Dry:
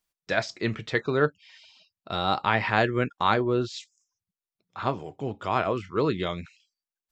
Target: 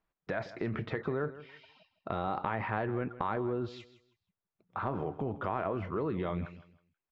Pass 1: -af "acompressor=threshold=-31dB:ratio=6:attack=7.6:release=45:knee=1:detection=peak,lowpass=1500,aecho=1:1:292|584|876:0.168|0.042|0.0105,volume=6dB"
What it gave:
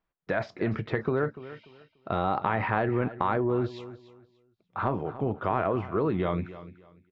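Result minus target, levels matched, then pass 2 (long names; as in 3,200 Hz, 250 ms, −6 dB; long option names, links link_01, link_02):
echo 132 ms late; downward compressor: peak gain reduction −6.5 dB
-af "acompressor=threshold=-39dB:ratio=6:attack=7.6:release=45:knee=1:detection=peak,lowpass=1500,aecho=1:1:160|320|480:0.168|0.042|0.0105,volume=6dB"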